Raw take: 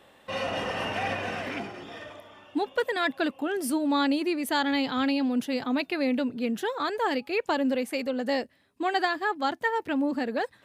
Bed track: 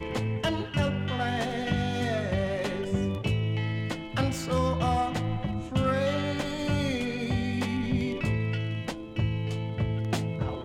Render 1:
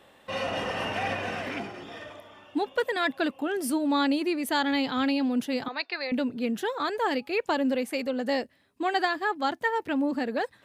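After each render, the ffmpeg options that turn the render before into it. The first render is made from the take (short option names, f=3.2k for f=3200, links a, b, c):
-filter_complex "[0:a]asettb=1/sr,asplit=3[a][b][c];[a]atrim=end=5.684[d];[b]atrim=start=5.68:end=6.12,asetpts=PTS-STARTPTS,afade=t=in:d=0.004:c=qsin,afade=t=out:st=0.436:d=0.004:c=qsin,highpass=f=480:w=0.5412,highpass=f=480:w=1.3066,equalizer=f=610:t=q:w=4:g=-8,equalizer=f=1.8k:t=q:w=4:g=4,equalizer=f=3.1k:t=q:w=4:g=-6,equalizer=f=4.5k:t=q:w=4:g=9,lowpass=f=4.8k:w=0.5412,lowpass=f=4.8k:w=1.3066[e];[c]atrim=start=6.116[f];[d][e]acrossfade=d=0.004:c1=hsin:c2=qsin[g];[g][f]acrossfade=d=0.004:c1=qsin:c2=hsin"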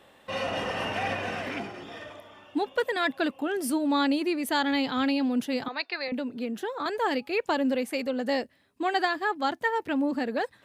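-filter_complex "[0:a]asettb=1/sr,asplit=3[a][b][c];[a]atrim=end=6.084[d];[b]atrim=start=6.08:end=6.86,asetpts=PTS-STARTPTS,afade=t=in:d=0.004:c=qsin,afade=t=out:st=0.776:d=0.004:c=qsin,acrossover=split=190|1400[e][f][g];[e]acompressor=threshold=-50dB:ratio=4[h];[f]acompressor=threshold=-29dB:ratio=4[i];[g]acompressor=threshold=-44dB:ratio=4[j];[h][i][j]amix=inputs=3:normalize=0[k];[c]atrim=start=6.856[l];[d][k]acrossfade=d=0.004:c1=hsin:c2=qsin[m];[m][l]acrossfade=d=0.004:c1=qsin:c2=hsin"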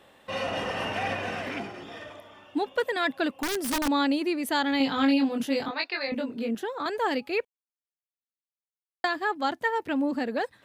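-filter_complex "[0:a]asettb=1/sr,asplit=3[a][b][c];[a]atrim=end=3.374[d];[b]atrim=start=3.37:end=3.88,asetpts=PTS-STARTPTS,afade=t=in:d=0.004:c=qsin,afade=t=out:st=0.506:d=0.004:c=qsin,aeval=exprs='(mod(13.3*val(0)+1,2)-1)/13.3':c=same[e];[c]atrim=start=3.876[f];[d][e]acrossfade=d=0.004:c1=hsin:c2=qsin[g];[g][f]acrossfade=d=0.004:c1=qsin:c2=hsin,asettb=1/sr,asplit=3[h][i][j];[h]atrim=end=4.784[k];[i]atrim=start=4.78:end=6.55,asetpts=PTS-STARTPTS,afade=t=in:d=0.004:c=qsin,afade=t=out:st=1.766:d=0.004:c=qsin,asplit=2[l][m];[m]adelay=22,volume=-2.5dB[n];[l][n]amix=inputs=2:normalize=0,atrim=end_sample=78057[o];[j]atrim=start=6.546[p];[k][o]acrossfade=d=0.004:c1=hsin:c2=qsin[q];[q][p]acrossfade=d=0.004:c1=qsin:c2=hsin,asplit=3[r][s][t];[r]atrim=end=7.45,asetpts=PTS-STARTPTS,afade=t=out:st=7.446:d=0.004:c=hsin[u];[s]atrim=start=7.45:end=9.04,asetpts=PTS-STARTPTS,volume=0[v];[t]atrim=start=9.04,asetpts=PTS-STARTPTS,afade=t=in:d=0.004:c=hsin[w];[u][v][w]concat=n=3:v=0:a=1"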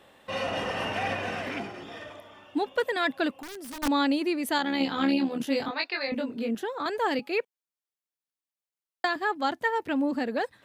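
-filter_complex "[0:a]asettb=1/sr,asplit=3[a][b][c];[a]atrim=end=3.344[d];[b]atrim=start=3.34:end=3.83,asetpts=PTS-STARTPTS,afade=t=in:d=0.004:c=qsin,afade=t=out:st=0.486:d=0.004:c=qsin,acompressor=threshold=-42dB:ratio=3:attack=3.2:release=140:knee=1:detection=peak[e];[c]atrim=start=3.826[f];[d][e]acrossfade=d=0.004:c1=hsin:c2=qsin[g];[g][f]acrossfade=d=0.004:c1=qsin:c2=hsin,asettb=1/sr,asplit=3[h][i][j];[h]atrim=end=4.584[k];[i]atrim=start=4.58:end=5.47,asetpts=PTS-STARTPTS,afade=t=in:d=0.004:c=qsin,afade=t=out:st=0.886:d=0.004:c=qsin,tremolo=f=74:d=0.519[l];[j]atrim=start=5.466[m];[k][l]acrossfade=d=0.004:c1=hsin:c2=qsin[n];[n][m]acrossfade=d=0.004:c1=qsin:c2=hsin,asettb=1/sr,asplit=3[o][p][q];[o]atrim=end=7.194[r];[p]atrim=start=7.19:end=9.16,asetpts=PTS-STARTPTS,afade=t=in:d=0.004:c=qsin,afade=t=out:st=1.966:d=0.004:c=qsin,highpass=f=150:w=0.5412,highpass=f=150:w=1.3066[s];[q]atrim=start=9.156[t];[r][s]acrossfade=d=0.004:c1=hsin:c2=qsin[u];[u][t]acrossfade=d=0.004:c1=qsin:c2=hsin"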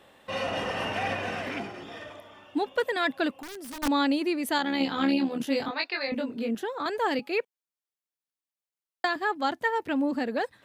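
-af anull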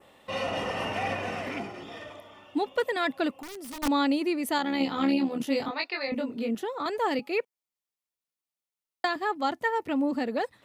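-af "bandreject=f=1.6k:w=7.8,adynamicequalizer=threshold=0.00355:dfrequency=3600:dqfactor=1.9:tfrequency=3600:tqfactor=1.9:attack=5:release=100:ratio=0.375:range=2:mode=cutabove:tftype=bell"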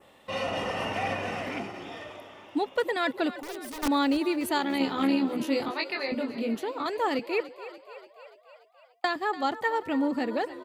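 -filter_complex "[0:a]asplit=8[a][b][c][d][e][f][g][h];[b]adelay=290,afreqshift=39,volume=-15dB[i];[c]adelay=580,afreqshift=78,volume=-19dB[j];[d]adelay=870,afreqshift=117,volume=-23dB[k];[e]adelay=1160,afreqshift=156,volume=-27dB[l];[f]adelay=1450,afreqshift=195,volume=-31.1dB[m];[g]adelay=1740,afreqshift=234,volume=-35.1dB[n];[h]adelay=2030,afreqshift=273,volume=-39.1dB[o];[a][i][j][k][l][m][n][o]amix=inputs=8:normalize=0"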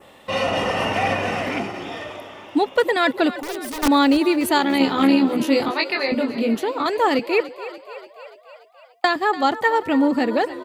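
-af "volume=9dB"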